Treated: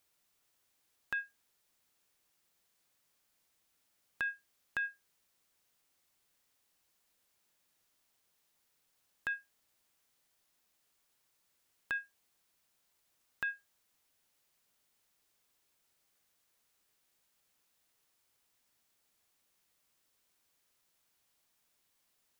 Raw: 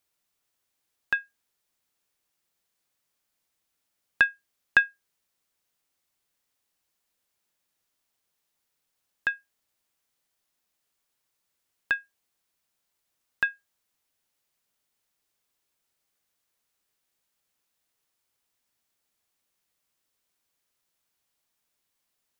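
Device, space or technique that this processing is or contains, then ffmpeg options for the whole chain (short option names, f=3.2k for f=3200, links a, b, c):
de-esser from a sidechain: -filter_complex "[0:a]asplit=2[a][b];[b]highpass=f=4.9k:p=1,apad=whole_len=987725[c];[a][c]sidechaincompress=threshold=-41dB:ratio=12:attack=0.84:release=40,volume=2.5dB"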